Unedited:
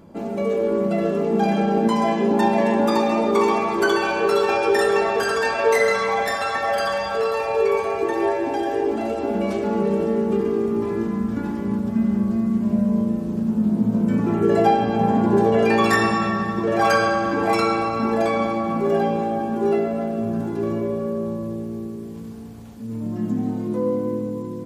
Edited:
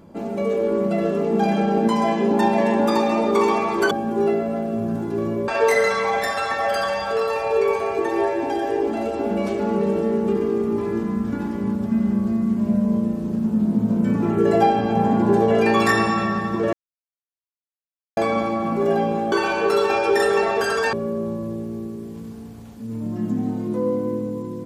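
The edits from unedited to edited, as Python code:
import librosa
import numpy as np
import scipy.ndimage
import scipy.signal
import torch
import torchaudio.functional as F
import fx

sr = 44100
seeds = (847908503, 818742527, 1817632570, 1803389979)

y = fx.edit(x, sr, fx.swap(start_s=3.91, length_s=1.61, other_s=19.36, other_length_s=1.57),
    fx.silence(start_s=16.77, length_s=1.44), tone=tone)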